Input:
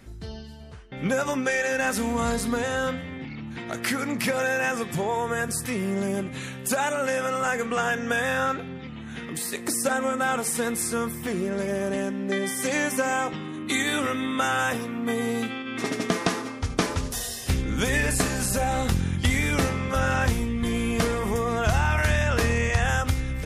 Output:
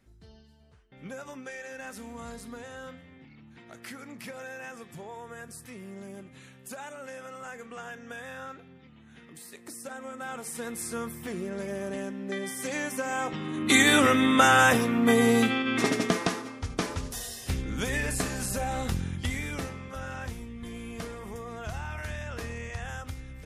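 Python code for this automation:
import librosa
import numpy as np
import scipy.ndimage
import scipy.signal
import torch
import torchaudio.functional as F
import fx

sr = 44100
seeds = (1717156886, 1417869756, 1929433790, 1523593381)

y = fx.gain(x, sr, db=fx.line((9.88, -16.0), (10.96, -7.0), (13.06, -7.0), (13.75, 5.5), (15.69, 5.5), (16.43, -6.0), (18.96, -6.0), (19.95, -14.0)))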